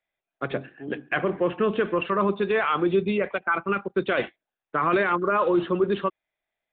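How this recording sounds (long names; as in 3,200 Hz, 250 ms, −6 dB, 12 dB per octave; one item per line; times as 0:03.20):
background noise floor −89 dBFS
spectral slope −4.5 dB per octave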